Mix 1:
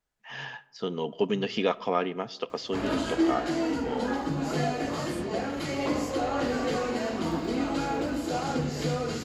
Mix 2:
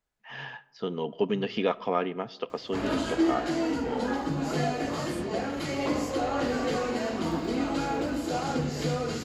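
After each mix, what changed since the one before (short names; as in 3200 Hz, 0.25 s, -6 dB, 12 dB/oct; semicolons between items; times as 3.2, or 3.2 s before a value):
first voice: add air absorption 140 m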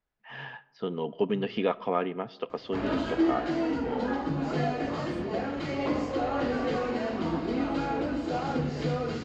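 master: add air absorption 160 m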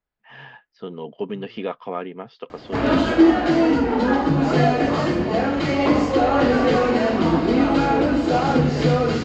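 background +11.5 dB; reverb: off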